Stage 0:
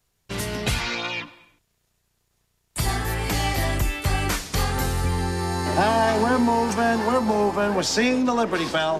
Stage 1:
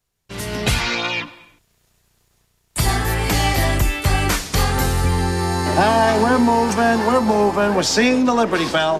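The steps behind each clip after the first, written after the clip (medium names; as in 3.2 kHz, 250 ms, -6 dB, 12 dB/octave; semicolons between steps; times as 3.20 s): level rider gain up to 13.5 dB; trim -4.5 dB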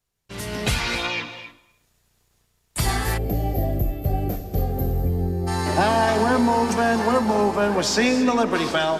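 gated-style reverb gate 300 ms rising, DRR 10.5 dB; time-frequency box 3.17–5.47 s, 780–12000 Hz -22 dB; trim -4 dB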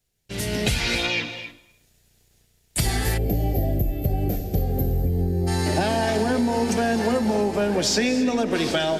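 peaking EQ 1.1 kHz -12 dB 0.76 oct; compression, threshold -23 dBFS, peak gain reduction 7 dB; trim +4.5 dB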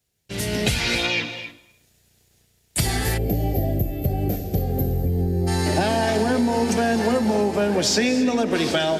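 high-pass 57 Hz; trim +1.5 dB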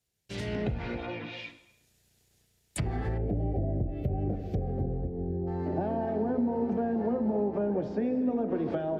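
low-pass that closes with the level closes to 700 Hz, closed at -17.5 dBFS; de-hum 86.4 Hz, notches 33; trim -7 dB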